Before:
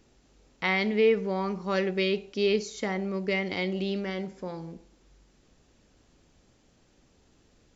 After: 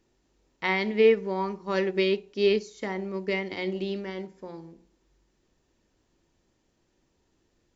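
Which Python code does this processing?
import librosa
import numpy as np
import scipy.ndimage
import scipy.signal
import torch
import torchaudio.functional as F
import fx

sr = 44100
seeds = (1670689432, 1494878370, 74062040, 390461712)

y = fx.hum_notches(x, sr, base_hz=60, count=7)
y = fx.small_body(y, sr, hz=(350.0, 950.0, 1800.0), ring_ms=45, db=7)
y = fx.upward_expand(y, sr, threshold_db=-40.0, expansion=1.5)
y = y * 10.0 ** (2.5 / 20.0)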